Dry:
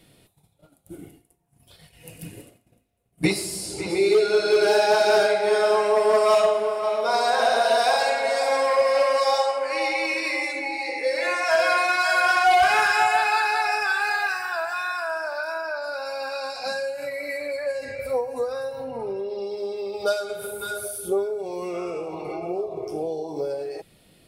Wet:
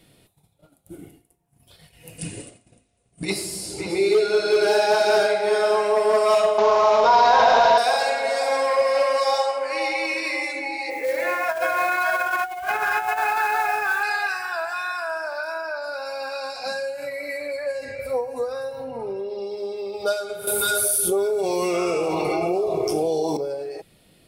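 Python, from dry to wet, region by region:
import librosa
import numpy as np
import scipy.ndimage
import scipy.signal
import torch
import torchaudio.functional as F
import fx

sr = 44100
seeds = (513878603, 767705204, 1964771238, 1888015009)

y = fx.chain(x, sr, fx.high_shelf(hz=5000.0, db=10.5),
    fx.over_compress(threshold_db=-23.0, ratio=-0.5),
    fx.brickwall_lowpass(high_hz=10000.0), at=(2.18, 3.3))
y = fx.chain(y, sr, fx.cvsd(bps=32000),
    fx.peak_eq(hz=950.0, db=12.5, octaves=0.31),
    fx.env_flatten(amount_pct=70), at=(6.58, 7.78))
y = fx.chain(y, sr, fx.lowpass(hz=2100.0, slope=12),
    fx.mod_noise(seeds[0], snr_db=20),
    fx.over_compress(threshold_db=-22.0, ratio=-0.5), at=(10.9, 14.03))
y = fx.chain(y, sr, fx.high_shelf(hz=2400.0, db=9.0),
    fx.env_flatten(amount_pct=70), at=(20.47, 23.37))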